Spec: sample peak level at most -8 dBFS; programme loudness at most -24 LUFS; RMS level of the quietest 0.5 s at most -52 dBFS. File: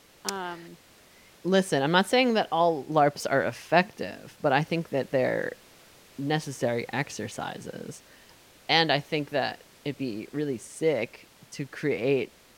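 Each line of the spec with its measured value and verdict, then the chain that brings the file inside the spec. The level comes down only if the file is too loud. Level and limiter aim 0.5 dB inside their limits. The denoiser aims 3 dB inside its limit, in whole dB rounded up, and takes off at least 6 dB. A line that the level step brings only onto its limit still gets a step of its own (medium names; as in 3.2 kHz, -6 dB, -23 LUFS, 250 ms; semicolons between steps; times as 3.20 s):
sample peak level -6.0 dBFS: fail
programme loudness -27.0 LUFS: pass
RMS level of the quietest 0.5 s -56 dBFS: pass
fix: peak limiter -8.5 dBFS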